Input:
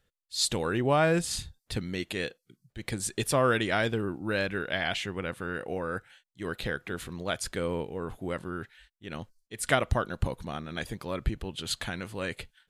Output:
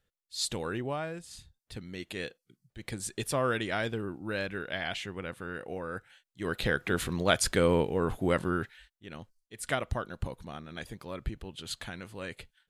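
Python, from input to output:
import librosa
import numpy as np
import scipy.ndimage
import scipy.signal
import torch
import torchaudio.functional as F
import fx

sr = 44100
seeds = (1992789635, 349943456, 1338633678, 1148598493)

y = fx.gain(x, sr, db=fx.line((0.73, -5.0), (1.2, -16.5), (2.19, -4.5), (5.93, -4.5), (6.95, 6.5), (8.52, 6.5), (9.14, -6.0)))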